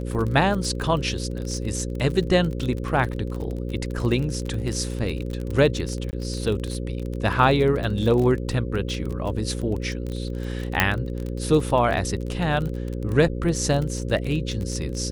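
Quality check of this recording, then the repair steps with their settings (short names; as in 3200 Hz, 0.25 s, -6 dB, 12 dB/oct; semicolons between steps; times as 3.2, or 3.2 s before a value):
buzz 60 Hz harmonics 9 -29 dBFS
crackle 31/s -27 dBFS
6.11–6.13 gap 19 ms
10.8 pop -2 dBFS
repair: de-click; de-hum 60 Hz, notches 9; interpolate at 6.11, 19 ms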